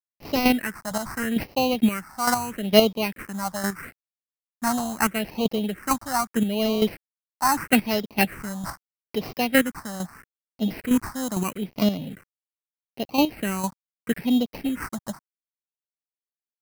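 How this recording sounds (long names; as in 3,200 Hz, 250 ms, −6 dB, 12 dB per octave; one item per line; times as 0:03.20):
aliases and images of a low sample rate 3,500 Hz, jitter 0%
chopped level 2.2 Hz, depth 60%, duty 15%
a quantiser's noise floor 10 bits, dither none
phaser sweep stages 4, 0.78 Hz, lowest notch 410–1,600 Hz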